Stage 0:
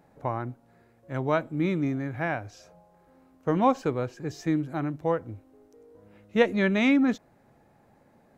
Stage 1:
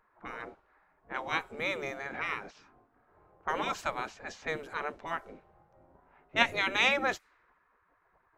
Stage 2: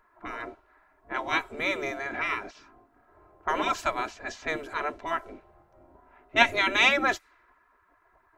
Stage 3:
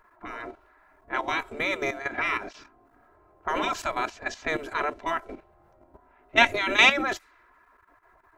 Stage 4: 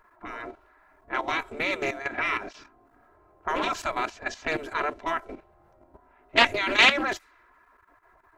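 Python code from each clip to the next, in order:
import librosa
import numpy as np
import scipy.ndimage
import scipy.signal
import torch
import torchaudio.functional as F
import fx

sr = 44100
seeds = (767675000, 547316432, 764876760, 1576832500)

y1 = fx.env_lowpass(x, sr, base_hz=1100.0, full_db=-23.5)
y1 = fx.spec_gate(y1, sr, threshold_db=-15, keep='weak')
y1 = F.gain(torch.from_numpy(y1), 6.0).numpy()
y2 = y1 + 0.54 * np.pad(y1, (int(3.0 * sr / 1000.0), 0))[:len(y1)]
y2 = F.gain(torch.from_numpy(y2), 4.0).numpy()
y3 = fx.level_steps(y2, sr, step_db=11)
y3 = F.gain(torch.from_numpy(y3), 6.5).numpy()
y4 = fx.doppler_dist(y3, sr, depth_ms=0.26)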